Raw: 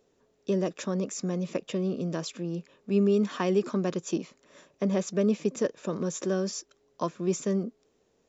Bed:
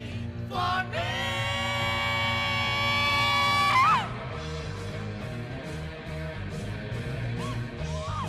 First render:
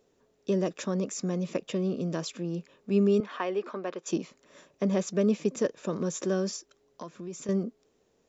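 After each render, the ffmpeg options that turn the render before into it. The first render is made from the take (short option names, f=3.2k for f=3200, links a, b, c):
-filter_complex "[0:a]asettb=1/sr,asplit=3[a][b][c];[a]atrim=end=3.204[d];[b]atrim=start=3.2:end=4.06,asetpts=PTS-STARTPTS,afade=t=in:d=0.004:c=qsin,afade=t=out:st=0.856:d=0.004:c=qsin,highpass=480,lowpass=2.8k[e];[c]atrim=start=4.056[f];[d][e]acrossfade=d=0.004:c1=hsin:c2=qsin[g];[g][f]acrossfade=d=0.004:c1=qsin:c2=hsin,asettb=1/sr,asplit=3[h][i][j];[h]atrim=end=6.564[k];[i]atrim=start=6.56:end=7.49,asetpts=PTS-STARTPTS,afade=t=in:d=0.004:c=qsin,afade=t=out:st=0.926:d=0.004:c=qsin,acompressor=threshold=-39dB:ratio=3:attack=3.2:release=140:knee=1:detection=peak[l];[j]atrim=start=7.486[m];[k][l]acrossfade=d=0.004:c1=hsin:c2=qsin[n];[n][m]acrossfade=d=0.004:c1=qsin:c2=hsin"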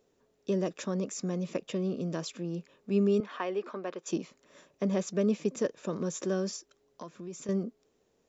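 -af "volume=-2.5dB"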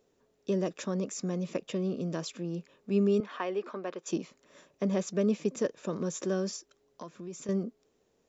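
-af anull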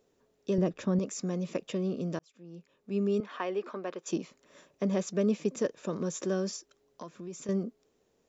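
-filter_complex "[0:a]asettb=1/sr,asplit=3[a][b][c];[a]atrim=end=0.584[d];[b]atrim=start=0.58:end=0.99,asetpts=PTS-STARTPTS,afade=t=in:d=0.004:c=qsin,afade=t=out:st=0.406:d=0.004:c=qsin,aemphasis=mode=reproduction:type=bsi[e];[c]atrim=start=0.986[f];[d][e]acrossfade=d=0.004:c1=hsin:c2=qsin[g];[g][f]acrossfade=d=0.004:c1=qsin:c2=hsin,asplit=2[h][i];[h]atrim=end=2.19,asetpts=PTS-STARTPTS,afade=t=out:st=2.186:d=0.004:c=hsin[j];[i]atrim=start=2.19,asetpts=PTS-STARTPTS,afade=t=in:d=1.26[k];[j][k]concat=n=2:v=0:a=1"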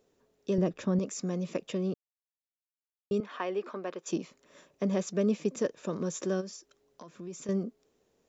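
-filter_complex "[0:a]asplit=3[a][b][c];[a]afade=t=out:st=6.4:d=0.02[d];[b]acompressor=threshold=-46dB:ratio=2:attack=3.2:release=140:knee=1:detection=peak,afade=t=in:st=6.4:d=0.02,afade=t=out:st=7.08:d=0.02[e];[c]afade=t=in:st=7.08:d=0.02[f];[d][e][f]amix=inputs=3:normalize=0,asplit=3[g][h][i];[g]atrim=end=1.94,asetpts=PTS-STARTPTS,afade=t=out:st=1.936:d=0.004:c=hsin[j];[h]atrim=start=1.94:end=3.11,asetpts=PTS-STARTPTS,volume=0[k];[i]atrim=start=3.11,asetpts=PTS-STARTPTS,afade=t=in:d=0.004:c=hsin[l];[j][k][l]concat=n=3:v=0:a=1"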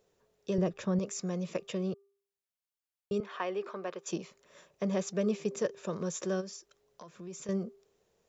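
-af "equalizer=f=270:w=3.6:g=-13.5,bandreject=f=397.2:t=h:w=4,bandreject=f=794.4:t=h:w=4,bandreject=f=1.1916k:t=h:w=4"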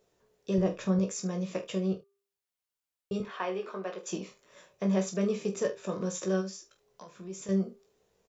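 -filter_complex "[0:a]asplit=2[a][b];[b]adelay=26,volume=-9.5dB[c];[a][c]amix=inputs=2:normalize=0,aecho=1:1:16|46|74:0.501|0.266|0.141"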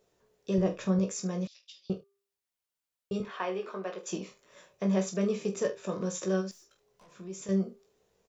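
-filter_complex "[0:a]asettb=1/sr,asplit=3[a][b][c];[a]atrim=end=1.474[d];[b]atrim=start=1.47:end=1.9,asetpts=PTS-STARTPTS,afade=t=in:d=0.004:c=qsin,afade=t=out:st=0.426:d=0.004:c=qsin,asuperpass=centerf=4400:order=4:qfactor=2.2[e];[c]atrim=start=1.896[f];[d][e]acrossfade=d=0.004:c1=hsin:c2=qsin[g];[g][f]acrossfade=d=0.004:c1=qsin:c2=hsin,asettb=1/sr,asplit=3[h][i][j];[h]atrim=end=6.514[k];[i]atrim=start=6.51:end=7.12,asetpts=PTS-STARTPTS,afade=t=in:d=0.004:c=qsin,afade=t=out:st=0.606:d=0.004:c=qsin,aeval=exprs='(tanh(631*val(0)+0.2)-tanh(0.2))/631':c=same[l];[j]atrim=start=7.116[m];[k][l]acrossfade=d=0.004:c1=hsin:c2=qsin[n];[n][m]acrossfade=d=0.004:c1=qsin:c2=hsin"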